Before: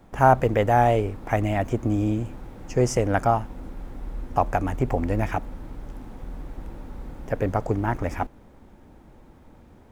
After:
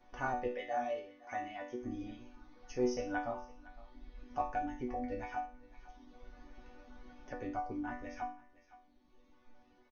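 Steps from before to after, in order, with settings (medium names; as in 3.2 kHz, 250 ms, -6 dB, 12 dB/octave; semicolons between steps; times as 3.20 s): 0.48–1.81 s: high-pass 330 Hz 6 dB/octave; reverb removal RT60 1.9 s; brick-wall FIR low-pass 6.6 kHz; chord resonator B3 minor, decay 0.44 s; on a send: delay 511 ms -24 dB; on the sum: tape noise reduction on one side only encoder only; trim +6.5 dB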